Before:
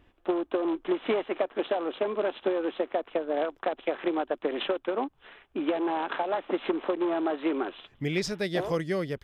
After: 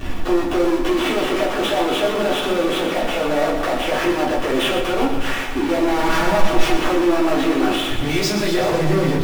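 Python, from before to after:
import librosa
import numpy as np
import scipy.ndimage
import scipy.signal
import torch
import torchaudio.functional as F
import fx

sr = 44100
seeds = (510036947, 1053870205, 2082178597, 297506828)

p1 = fx.lower_of_two(x, sr, delay_ms=6.2, at=(5.82, 6.75))
p2 = fx.over_compress(p1, sr, threshold_db=-36.0, ratio=-1.0)
p3 = p1 + (p2 * librosa.db_to_amplitude(1.5))
p4 = fx.highpass(p3, sr, hz=310.0, slope=6, at=(8.09, 8.61))
p5 = fx.power_curve(p4, sr, exponent=0.35)
p6 = p5 + fx.echo_feedback(p5, sr, ms=122, feedback_pct=60, wet_db=-8.5, dry=0)
p7 = fx.room_shoebox(p6, sr, seeds[0], volume_m3=190.0, walls='furnished', distance_m=3.5)
y = p7 * librosa.db_to_amplitude(-12.5)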